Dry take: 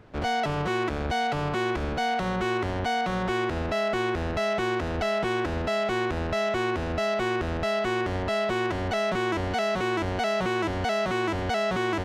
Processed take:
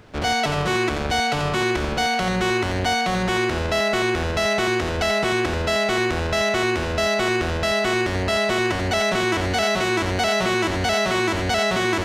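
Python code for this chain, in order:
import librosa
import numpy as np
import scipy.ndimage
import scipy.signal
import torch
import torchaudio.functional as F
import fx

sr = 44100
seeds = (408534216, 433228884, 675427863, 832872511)

y = fx.high_shelf(x, sr, hz=2800.0, db=10.5)
y = y + 10.0 ** (-7.5 / 20.0) * np.pad(y, (int(87 * sr / 1000.0), 0))[:len(y)]
y = y * 10.0 ** (3.5 / 20.0)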